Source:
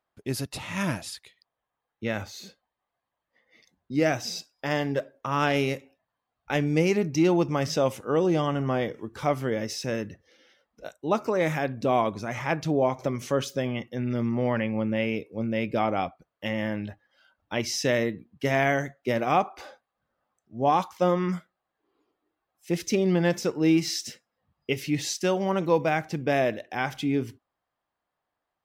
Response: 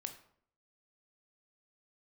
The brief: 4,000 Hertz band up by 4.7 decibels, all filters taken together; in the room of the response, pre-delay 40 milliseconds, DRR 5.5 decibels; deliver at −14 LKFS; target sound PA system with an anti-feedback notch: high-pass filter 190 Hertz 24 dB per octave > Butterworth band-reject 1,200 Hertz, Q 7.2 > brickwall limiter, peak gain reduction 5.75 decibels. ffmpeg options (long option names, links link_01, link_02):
-filter_complex "[0:a]equalizer=frequency=4000:width_type=o:gain=6.5,asplit=2[link_01][link_02];[1:a]atrim=start_sample=2205,adelay=40[link_03];[link_02][link_03]afir=irnorm=-1:irlink=0,volume=-3dB[link_04];[link_01][link_04]amix=inputs=2:normalize=0,highpass=frequency=190:width=0.5412,highpass=frequency=190:width=1.3066,asuperstop=centerf=1200:order=8:qfactor=7.2,volume=13.5dB,alimiter=limit=-1.5dB:level=0:latency=1"